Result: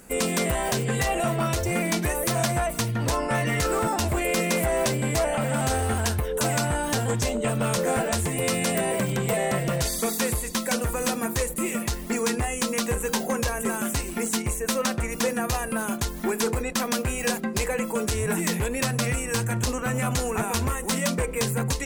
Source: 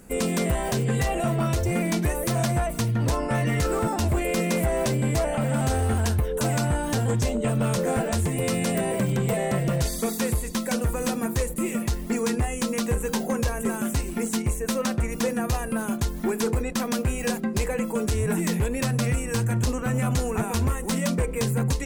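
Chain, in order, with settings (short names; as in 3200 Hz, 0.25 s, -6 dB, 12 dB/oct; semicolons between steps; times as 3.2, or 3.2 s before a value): low shelf 440 Hz -8 dB; gain +4 dB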